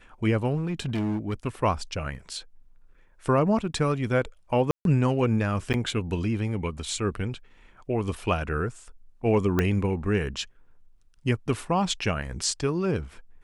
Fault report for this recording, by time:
0:00.56–0:01.34: clipping −24 dBFS
0:04.71–0:04.85: drop-out 142 ms
0:05.73–0:05.74: drop-out 9.3 ms
0:09.59: click −10 dBFS

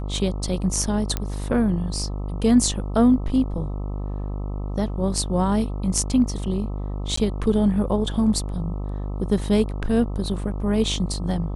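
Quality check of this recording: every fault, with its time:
mains buzz 50 Hz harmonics 26 −28 dBFS
0:01.17: click −10 dBFS
0:07.16–0:07.17: drop-out 14 ms

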